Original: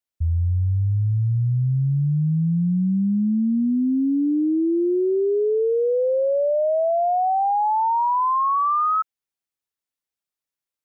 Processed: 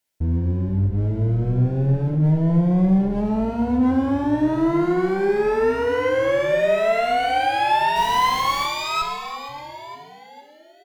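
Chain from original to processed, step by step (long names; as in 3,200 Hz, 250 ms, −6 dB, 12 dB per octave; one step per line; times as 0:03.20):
hum removal 49.59 Hz, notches 5
in parallel at +2 dB: brickwall limiter −26 dBFS, peak gain reduction 11.5 dB
on the sum: asymmetric clip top −32.5 dBFS, bottom −17.5 dBFS
on a send: echo with shifted repeats 463 ms, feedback 46%, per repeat −140 Hz, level −12.5 dB
on the sum: soft clipping −18 dBFS, distortion −24 dB
0:07.95–0:08.65: background noise pink −40 dBFS
Butterworth band-reject 1,200 Hz, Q 7.5
reverb whose tail is shaped and stops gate 380 ms falling, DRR 3 dB
level +3 dB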